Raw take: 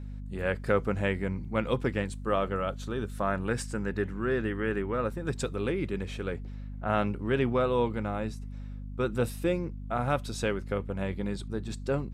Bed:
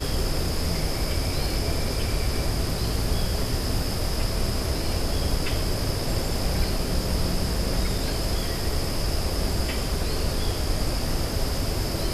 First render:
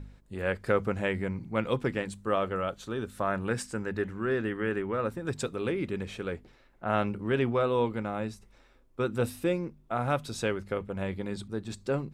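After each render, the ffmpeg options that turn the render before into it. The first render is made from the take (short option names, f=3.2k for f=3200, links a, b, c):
-af "bandreject=f=50:t=h:w=4,bandreject=f=100:t=h:w=4,bandreject=f=150:t=h:w=4,bandreject=f=200:t=h:w=4,bandreject=f=250:t=h:w=4"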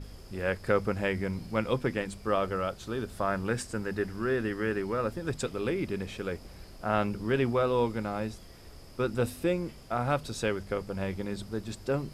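-filter_complex "[1:a]volume=-24dB[a];[0:a][a]amix=inputs=2:normalize=0"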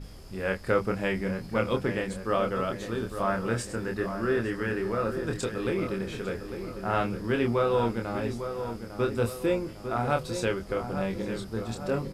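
-filter_complex "[0:a]asplit=2[a][b];[b]adelay=26,volume=-4.5dB[c];[a][c]amix=inputs=2:normalize=0,asplit=2[d][e];[e]adelay=852,lowpass=f=2k:p=1,volume=-8.5dB,asplit=2[f][g];[g]adelay=852,lowpass=f=2k:p=1,volume=0.53,asplit=2[h][i];[i]adelay=852,lowpass=f=2k:p=1,volume=0.53,asplit=2[j][k];[k]adelay=852,lowpass=f=2k:p=1,volume=0.53,asplit=2[l][m];[m]adelay=852,lowpass=f=2k:p=1,volume=0.53,asplit=2[n][o];[o]adelay=852,lowpass=f=2k:p=1,volume=0.53[p];[d][f][h][j][l][n][p]amix=inputs=7:normalize=0"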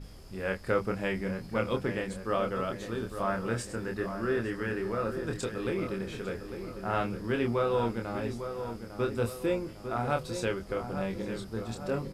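-af "volume=-3dB"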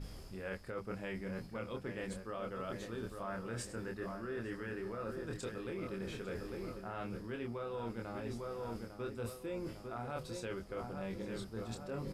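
-af "alimiter=limit=-20.5dB:level=0:latency=1:release=185,areverse,acompressor=threshold=-39dB:ratio=6,areverse"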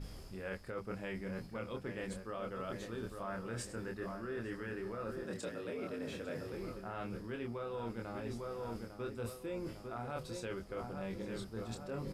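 -filter_complex "[0:a]asettb=1/sr,asplit=3[a][b][c];[a]atrim=end=5.244[d];[b]atrim=start=5.24:end=6.53,asetpts=PTS-STARTPTS,afade=t=in:d=0.004:c=qsin,afade=t=out:st=1.286:d=0.004:c=qsin,afreqshift=67[e];[c]atrim=start=6.526[f];[d][e]acrossfade=d=0.004:c1=hsin:c2=qsin[g];[g][f]acrossfade=d=0.004:c1=qsin:c2=hsin"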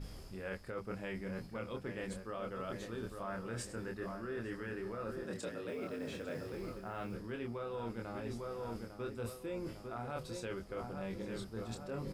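-filter_complex "[0:a]asettb=1/sr,asplit=3[a][b][c];[a]atrim=end=5.684[d];[b]atrim=start=5.68:end=7.15,asetpts=PTS-STARTPTS,afade=t=in:d=0.004:c=qsin,afade=t=out:st=1.466:d=0.004:c=qsin,acrusher=bits=8:mode=log:mix=0:aa=0.000001[e];[c]atrim=start=7.146[f];[d][e]acrossfade=d=0.004:c1=hsin:c2=qsin[g];[g][f]acrossfade=d=0.004:c1=qsin:c2=hsin"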